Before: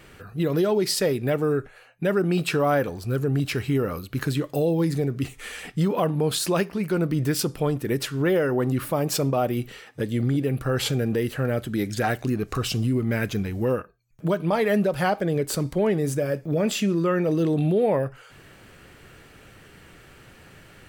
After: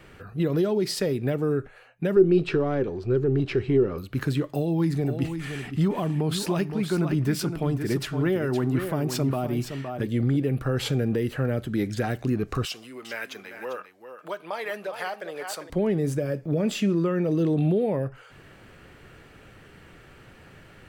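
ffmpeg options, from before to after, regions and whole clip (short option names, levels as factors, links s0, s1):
-filter_complex "[0:a]asettb=1/sr,asplit=3[s0][s1][s2];[s0]atrim=end=2.164[s3];[s1]atrim=start=2.16:end=3.98,asetpts=PTS-STARTPTS,afade=t=in:d=0.004:c=qsin,afade=t=out:st=1.816:d=0.004:c=qsin,aeval=exprs='if(lt(val(0),0),0.708*val(0),val(0))':c=same,lowpass=4400,equalizer=f=380:w=4.8:g=14[s4];[s2]atrim=start=3.976[s5];[s3][s4]acrossfade=d=0.004:c1=hsin:c2=qsin[s6];[s6][s5]acrossfade=d=0.004:c1=qsin:c2=hsin,asettb=1/sr,asplit=3[s7][s8][s9];[s7]atrim=end=4.494[s10];[s8]atrim=start=4.49:end=10.07,asetpts=PTS-STARTPTS,afade=t=in:d=0.004:c=qsin,afade=t=out:st=5.576:d=0.004:c=qsin,equalizer=f=500:t=o:w=0.22:g=-11,aecho=1:1:515:0.355,atrim=end_sample=246078[s11];[s9]atrim=start=10.066[s12];[s10][s11]acrossfade=d=0.004:c1=hsin:c2=qsin[s13];[s13][s12]acrossfade=d=0.004:c1=qsin:c2=hsin,asettb=1/sr,asplit=3[s14][s15][s16];[s14]atrim=end=12.654[s17];[s15]atrim=start=12.65:end=15.7,asetpts=PTS-STARTPTS,afade=t=in:d=0.004:c=qsin,afade=t=out:st=3.046:d=0.004:c=qsin,highpass=790,aecho=1:1:397:0.299,atrim=end_sample=134505[s18];[s16]atrim=start=15.696[s19];[s17][s18]acrossfade=d=0.004:c1=hsin:c2=qsin[s20];[s20][s19]acrossfade=d=0.004:c1=qsin:c2=hsin,highshelf=f=4300:g=-8.5,acrossover=split=410|3000[s21][s22][s23];[s22]acompressor=threshold=0.0316:ratio=6[s24];[s21][s24][s23]amix=inputs=3:normalize=0"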